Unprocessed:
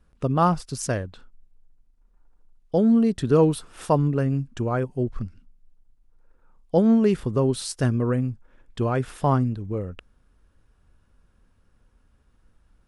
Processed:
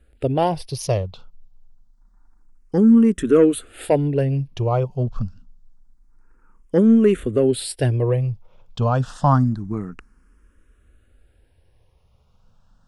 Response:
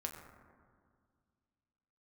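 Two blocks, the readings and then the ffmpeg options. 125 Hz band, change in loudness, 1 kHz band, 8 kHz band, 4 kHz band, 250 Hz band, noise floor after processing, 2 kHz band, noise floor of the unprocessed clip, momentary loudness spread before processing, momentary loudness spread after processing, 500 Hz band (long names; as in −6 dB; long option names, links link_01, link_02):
+3.5 dB, +3.5 dB, +2.0 dB, +2.0 dB, +3.5 dB, +4.0 dB, −59 dBFS, +1.0 dB, −63 dBFS, 12 LU, 14 LU, +4.0 dB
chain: -filter_complex "[0:a]acontrast=77,asplit=2[link_01][link_02];[link_02]afreqshift=0.27[link_03];[link_01][link_03]amix=inputs=2:normalize=1"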